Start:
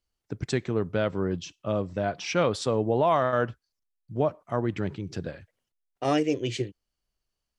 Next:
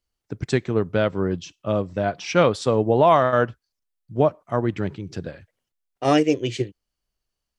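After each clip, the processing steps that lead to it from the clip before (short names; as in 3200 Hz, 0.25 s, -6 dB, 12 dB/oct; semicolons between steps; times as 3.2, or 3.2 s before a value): upward expander 1.5:1, over -33 dBFS; gain +7.5 dB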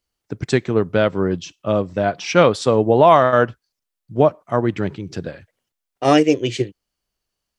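low shelf 70 Hz -8.5 dB; gain +4.5 dB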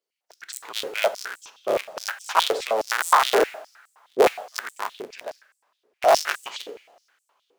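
cycle switcher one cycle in 3, inverted; two-slope reverb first 0.76 s, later 3.1 s, from -21 dB, DRR 12 dB; stepped high-pass 9.6 Hz 430–8000 Hz; gain -9 dB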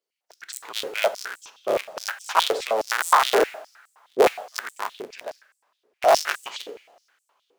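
nothing audible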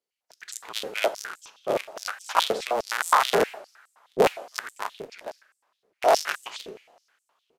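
AM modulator 230 Hz, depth 40%; downsampling 32000 Hz; record warp 78 rpm, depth 160 cents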